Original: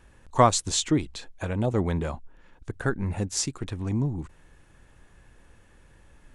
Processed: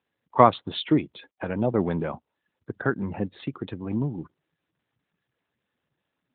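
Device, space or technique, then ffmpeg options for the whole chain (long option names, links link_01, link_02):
mobile call with aggressive noise cancelling: -af "highpass=150,afftdn=noise_reduction=30:noise_floor=-45,volume=3dB" -ar 8000 -c:a libopencore_amrnb -b:a 12200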